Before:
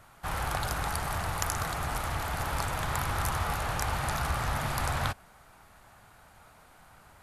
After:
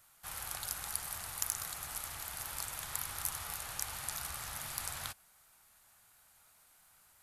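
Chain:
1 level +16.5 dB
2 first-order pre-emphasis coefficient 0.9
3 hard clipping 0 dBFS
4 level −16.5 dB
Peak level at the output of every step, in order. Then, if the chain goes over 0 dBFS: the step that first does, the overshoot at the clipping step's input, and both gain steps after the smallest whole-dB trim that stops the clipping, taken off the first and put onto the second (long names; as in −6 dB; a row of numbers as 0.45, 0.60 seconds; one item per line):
+6.0, +6.5, 0.0, −16.5 dBFS
step 1, 6.5 dB
step 1 +9.5 dB, step 4 −9.5 dB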